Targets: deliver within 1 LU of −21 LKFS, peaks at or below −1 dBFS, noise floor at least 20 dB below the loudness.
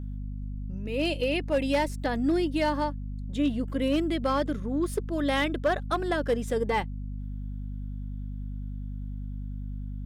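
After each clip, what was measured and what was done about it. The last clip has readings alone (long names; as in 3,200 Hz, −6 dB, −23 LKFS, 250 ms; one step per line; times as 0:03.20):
share of clipped samples 0.4%; peaks flattened at −18.0 dBFS; mains hum 50 Hz; hum harmonics up to 250 Hz; level of the hum −32 dBFS; integrated loudness −29.5 LKFS; sample peak −18.0 dBFS; target loudness −21.0 LKFS
→ clipped peaks rebuilt −18 dBFS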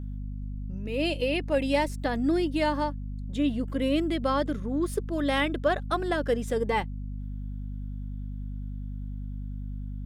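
share of clipped samples 0.0%; mains hum 50 Hz; hum harmonics up to 250 Hz; level of the hum −32 dBFS
→ hum removal 50 Hz, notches 5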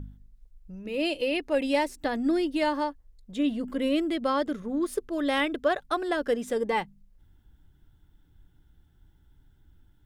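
mains hum none found; integrated loudness −28.0 LKFS; sample peak −13.5 dBFS; target loudness −21.0 LKFS
→ level +7 dB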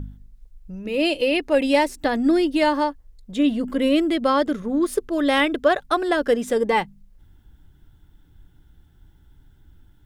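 integrated loudness −21.0 LKFS; sample peak −6.5 dBFS; background noise floor −55 dBFS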